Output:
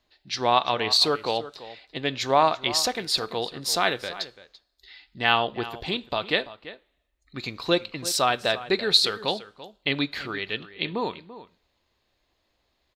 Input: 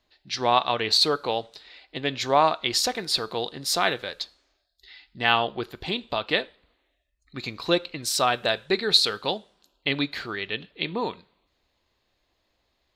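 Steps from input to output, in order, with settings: echo from a far wall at 58 m, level -15 dB

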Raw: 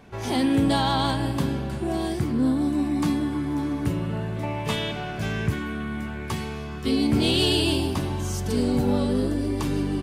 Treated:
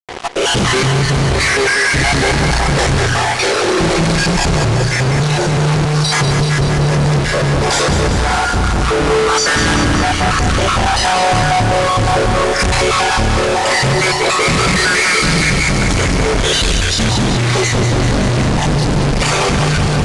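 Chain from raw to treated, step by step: random holes in the spectrogram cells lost 59%; treble shelf 11 kHz +8 dB; hum notches 60/120/180/240/300 Hz; in parallel at +1 dB: gain riding 0.5 s; on the sum: fuzz box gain 49 dB, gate -49 dBFS; on a send: thinning echo 96 ms, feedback 74%, high-pass 420 Hz, level -7.5 dB; on the sum: speed mistake 15 ips tape played at 7.5 ips

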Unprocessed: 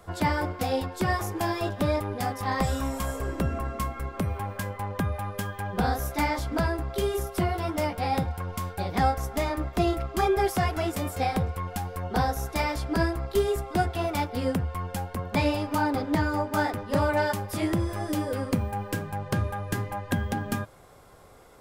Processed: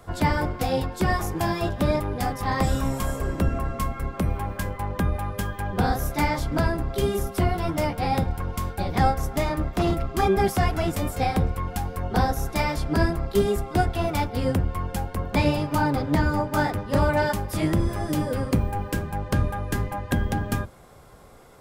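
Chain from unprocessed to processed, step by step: octave divider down 1 oct, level 0 dB; 9.43–10.20 s: hard clipper -19 dBFS, distortion -27 dB; trim +2 dB

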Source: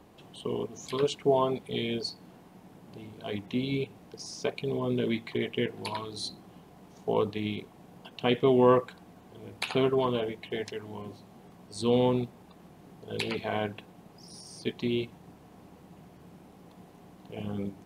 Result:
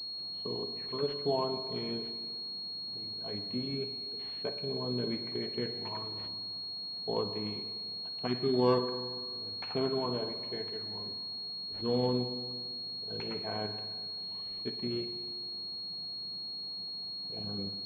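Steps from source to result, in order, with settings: spectral selection erased 8.27–8.54 s, 410–1100 Hz; spring tank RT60 1.7 s, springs 49/56 ms, chirp 75 ms, DRR 8 dB; class-D stage that switches slowly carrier 4.3 kHz; trim -6.5 dB

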